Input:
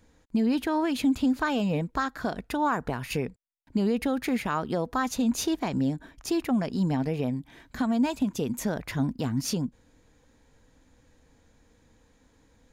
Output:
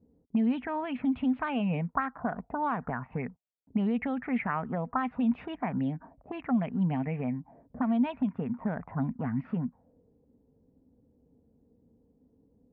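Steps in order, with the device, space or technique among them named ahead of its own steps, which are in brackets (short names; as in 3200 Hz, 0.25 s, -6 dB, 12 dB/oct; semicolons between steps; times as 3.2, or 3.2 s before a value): envelope filter bass rig (envelope low-pass 380–3400 Hz up, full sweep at -21.5 dBFS; speaker cabinet 61–2200 Hz, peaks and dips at 170 Hz +5 dB, 240 Hz +5 dB, 340 Hz -10 dB, 510 Hz -3 dB, 730 Hz +4 dB, 1600 Hz -5 dB); gain -5 dB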